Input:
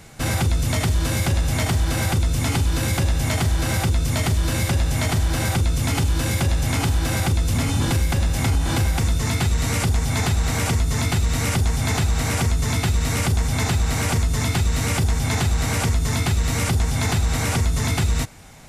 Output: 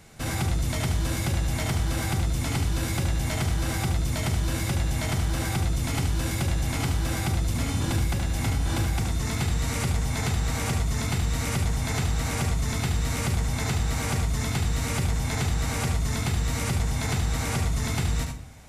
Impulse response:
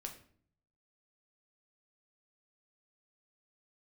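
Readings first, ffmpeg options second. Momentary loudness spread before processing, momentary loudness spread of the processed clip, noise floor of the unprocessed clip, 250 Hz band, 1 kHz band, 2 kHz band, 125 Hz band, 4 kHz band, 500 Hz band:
0 LU, 0 LU, -25 dBFS, -5.0 dB, -5.5 dB, -5.5 dB, -5.5 dB, -6.0 dB, -5.5 dB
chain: -filter_complex "[0:a]asplit=2[a][b];[1:a]atrim=start_sample=2205,adelay=73[c];[b][c]afir=irnorm=-1:irlink=0,volume=-1.5dB[d];[a][d]amix=inputs=2:normalize=0,volume=-7dB"

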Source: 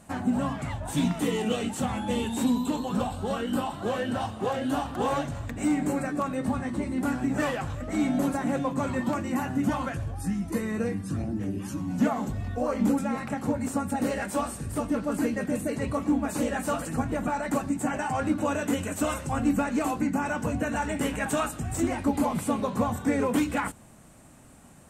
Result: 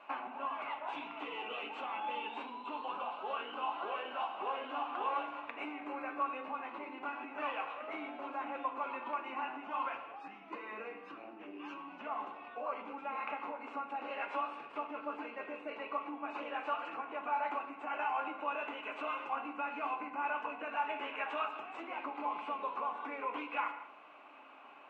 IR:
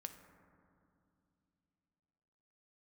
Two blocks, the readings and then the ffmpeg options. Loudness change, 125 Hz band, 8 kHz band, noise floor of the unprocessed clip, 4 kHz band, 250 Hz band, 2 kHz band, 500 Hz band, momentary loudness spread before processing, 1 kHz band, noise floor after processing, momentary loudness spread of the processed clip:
-11.0 dB, under -40 dB, under -40 dB, -49 dBFS, -9.0 dB, -22.5 dB, -6.5 dB, -13.0 dB, 5 LU, -4.0 dB, -53 dBFS, 8 LU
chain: -filter_complex "[0:a]acompressor=threshold=-35dB:ratio=6,highpass=f=470:w=0.5412,highpass=f=470:w=1.3066,equalizer=f=480:t=q:w=4:g=-9,equalizer=f=700:t=q:w=4:g=-3,equalizer=f=1.1k:t=q:w=4:g=6,equalizer=f=1.8k:t=q:w=4:g=-9,equalizer=f=2.6k:t=q:w=4:g=9,lowpass=f=2.7k:w=0.5412,lowpass=f=2.7k:w=1.3066[a];[1:a]atrim=start_sample=2205,afade=t=out:st=0.42:d=0.01,atrim=end_sample=18963,asetrate=70560,aresample=44100[b];[a][b]afir=irnorm=-1:irlink=0,volume=12.5dB"

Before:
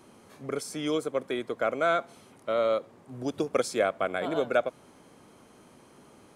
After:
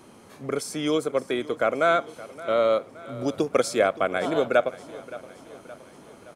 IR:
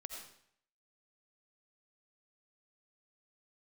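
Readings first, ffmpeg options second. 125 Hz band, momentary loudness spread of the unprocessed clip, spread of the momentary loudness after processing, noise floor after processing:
+4.5 dB, 10 LU, 18 LU, -50 dBFS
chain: -af "aecho=1:1:570|1140|1710|2280:0.126|0.0667|0.0354|0.0187,volume=4.5dB"

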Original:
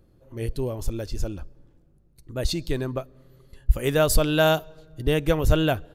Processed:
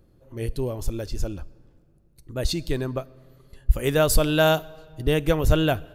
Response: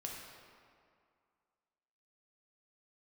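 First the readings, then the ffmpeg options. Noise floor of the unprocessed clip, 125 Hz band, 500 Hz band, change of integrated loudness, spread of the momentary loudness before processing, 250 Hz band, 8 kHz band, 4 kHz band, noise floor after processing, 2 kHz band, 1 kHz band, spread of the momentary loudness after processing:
-59 dBFS, +0.5 dB, +0.5 dB, +0.5 dB, 14 LU, +0.5 dB, +1.0 dB, +0.5 dB, -58 dBFS, +0.5 dB, +0.5 dB, 15 LU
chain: -filter_complex "[0:a]asplit=2[a][b];[1:a]atrim=start_sample=2205,highshelf=f=4.6k:g=9[c];[b][c]afir=irnorm=-1:irlink=0,volume=-20.5dB[d];[a][d]amix=inputs=2:normalize=0"

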